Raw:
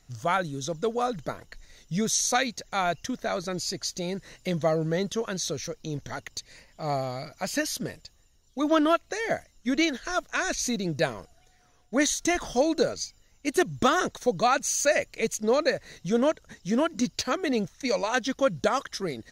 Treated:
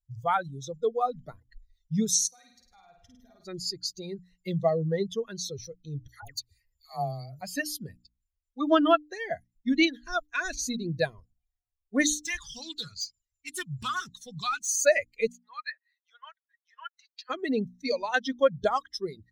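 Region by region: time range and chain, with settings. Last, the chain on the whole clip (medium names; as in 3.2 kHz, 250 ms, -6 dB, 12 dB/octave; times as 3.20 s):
2.27–3.45 s: compression, threshold -40 dBFS + flutter echo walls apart 8.9 m, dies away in 1.3 s
6.08–7.41 s: treble shelf 10 kHz +12 dB + phase dispersion lows, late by 148 ms, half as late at 960 Hz
12.18–14.69 s: FFT filter 150 Hz 0 dB, 580 Hz -28 dB, 1.1 kHz -13 dB, 1.8 kHz -12 dB, 7.4 kHz -5 dB + overdrive pedal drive 21 dB, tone 6.1 kHz, clips at -20 dBFS + loudspeaker Doppler distortion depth 0.32 ms
15.32–17.30 s: high-pass 1.1 kHz 24 dB/octave + peaking EQ 11 kHz -15 dB 2 oct
whole clip: expander on every frequency bin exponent 2; hum notches 60/120/180/240/300 Hz; trim +4 dB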